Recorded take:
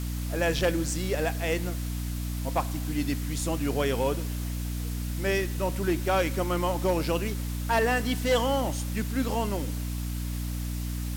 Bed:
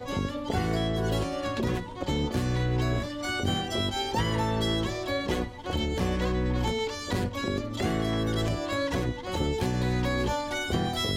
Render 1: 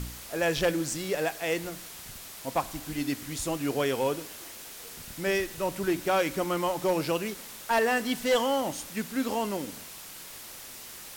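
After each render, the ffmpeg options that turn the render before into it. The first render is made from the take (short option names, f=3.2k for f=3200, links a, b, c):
-af "bandreject=f=60:t=h:w=4,bandreject=f=120:t=h:w=4,bandreject=f=180:t=h:w=4,bandreject=f=240:t=h:w=4,bandreject=f=300:t=h:w=4"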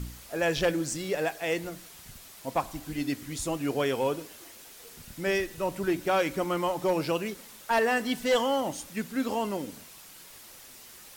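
-af "afftdn=nr=6:nf=-44"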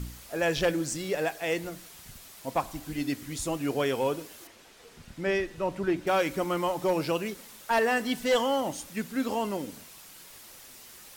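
-filter_complex "[0:a]asettb=1/sr,asplit=3[a][b][c];[a]atrim=end=4.474[d];[b]atrim=start=4.47:end=6.07,asetpts=PTS-STARTPTS,afade=t=in:d=0.004:c=qsin,afade=t=out:st=1.596:d=0.004:c=qsin,aemphasis=mode=reproduction:type=50fm[e];[c]atrim=start=6.066[f];[d][e]acrossfade=d=0.004:c1=hsin:c2=qsin[g];[g][f]acrossfade=d=0.004:c1=qsin:c2=hsin"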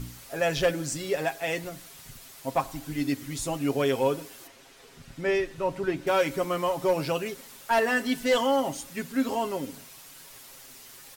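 -af "aecho=1:1:7.4:0.56"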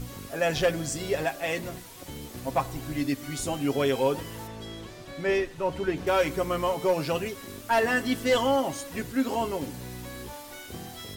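-filter_complex "[1:a]volume=-13dB[a];[0:a][a]amix=inputs=2:normalize=0"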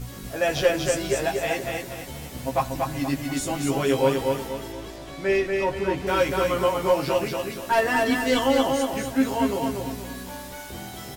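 -filter_complex "[0:a]asplit=2[a][b];[b]adelay=15,volume=-2.5dB[c];[a][c]amix=inputs=2:normalize=0,aecho=1:1:238|476|714|952|1190:0.668|0.247|0.0915|0.0339|0.0125"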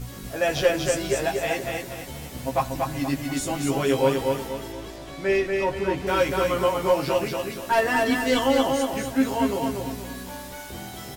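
-af anull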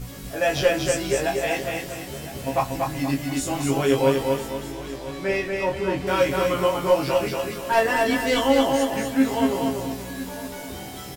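-filter_complex "[0:a]asplit=2[a][b];[b]adelay=22,volume=-5.5dB[c];[a][c]amix=inputs=2:normalize=0,aecho=1:1:1009:0.158"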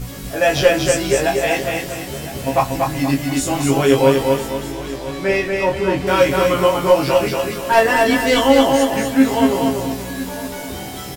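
-af "volume=6.5dB,alimiter=limit=-1dB:level=0:latency=1"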